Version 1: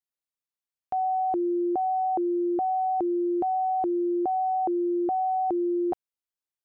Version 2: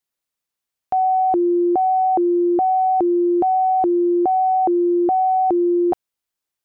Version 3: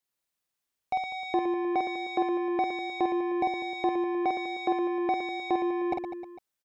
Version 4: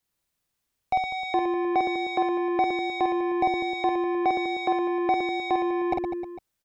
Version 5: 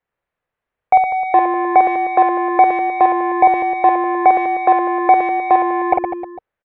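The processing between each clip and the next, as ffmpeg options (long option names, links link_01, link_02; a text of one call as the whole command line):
ffmpeg -i in.wav -af "acontrast=60,volume=2.5dB" out.wav
ffmpeg -i in.wav -filter_complex "[0:a]asoftclip=type=tanh:threshold=-21dB,asplit=2[link_01][link_02];[link_02]aecho=0:1:50|115|199.5|309.4|452.2:0.631|0.398|0.251|0.158|0.1[link_03];[link_01][link_03]amix=inputs=2:normalize=0,volume=-3dB" out.wav
ffmpeg -i in.wav -filter_complex "[0:a]lowshelf=frequency=190:gain=11,acrossover=split=520[link_01][link_02];[link_01]alimiter=level_in=6.5dB:limit=-24dB:level=0:latency=1,volume=-6.5dB[link_03];[link_03][link_02]amix=inputs=2:normalize=0,volume=4.5dB" out.wav
ffmpeg -i in.wav -filter_complex "[0:a]asplit=2[link_01][link_02];[link_02]adynamicsmooth=sensitivity=5:basefreq=600,volume=2.5dB[link_03];[link_01][link_03]amix=inputs=2:normalize=0,firequalizer=gain_entry='entry(290,0);entry(480,13);entry(1700,14);entry(5300,-17)':delay=0.05:min_phase=1,volume=-6.5dB" out.wav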